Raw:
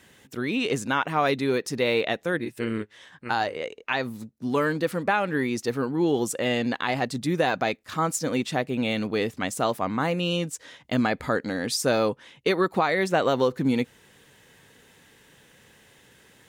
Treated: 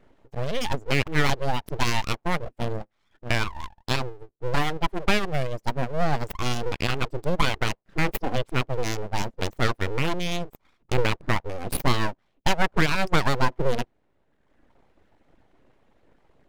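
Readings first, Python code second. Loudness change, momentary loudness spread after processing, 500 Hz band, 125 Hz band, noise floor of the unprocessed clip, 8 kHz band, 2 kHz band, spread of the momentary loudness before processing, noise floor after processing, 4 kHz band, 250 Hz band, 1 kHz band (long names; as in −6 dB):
−1.5 dB, 8 LU, −4.0 dB, +5.0 dB, −57 dBFS, −3.0 dB, 0.0 dB, 7 LU, −70 dBFS, +1.5 dB, −4.5 dB, −1.0 dB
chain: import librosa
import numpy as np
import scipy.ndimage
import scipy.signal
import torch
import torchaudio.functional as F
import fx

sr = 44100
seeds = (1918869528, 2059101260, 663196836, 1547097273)

y = fx.wiener(x, sr, points=41)
y = fx.dereverb_blind(y, sr, rt60_s=1.2)
y = np.abs(y)
y = y * 10.0 ** (5.5 / 20.0)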